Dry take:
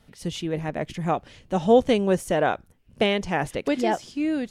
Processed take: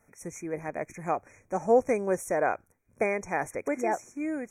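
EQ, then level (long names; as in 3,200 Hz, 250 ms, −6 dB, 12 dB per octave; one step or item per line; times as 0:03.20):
linear-phase brick-wall band-stop 2,500–5,500 Hz
bass and treble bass −12 dB, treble +2 dB
parametric band 100 Hz +8 dB 0.39 octaves
−3.5 dB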